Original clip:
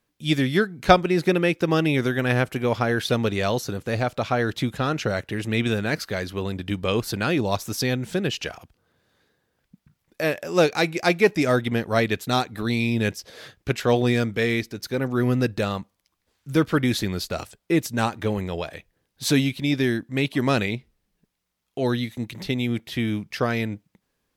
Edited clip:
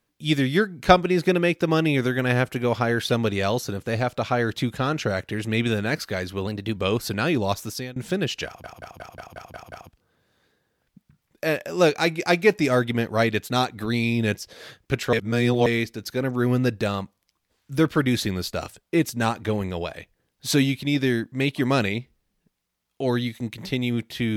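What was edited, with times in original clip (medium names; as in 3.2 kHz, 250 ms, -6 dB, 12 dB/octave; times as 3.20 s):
6.47–6.79 s: speed 110%
7.60–7.99 s: fade out, to -22.5 dB
8.49 s: stutter 0.18 s, 8 plays
13.90–14.43 s: reverse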